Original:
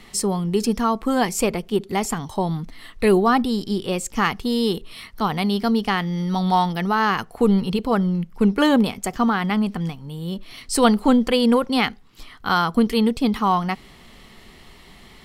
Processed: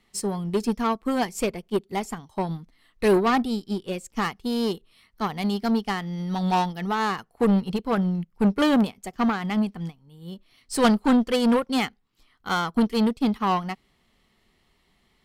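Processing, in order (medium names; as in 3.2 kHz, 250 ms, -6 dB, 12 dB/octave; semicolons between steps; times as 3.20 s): saturation -9.5 dBFS, distortion -20 dB; Chebyshev shaper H 5 -19 dB, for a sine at -9.5 dBFS; upward expansion 2.5:1, over -30 dBFS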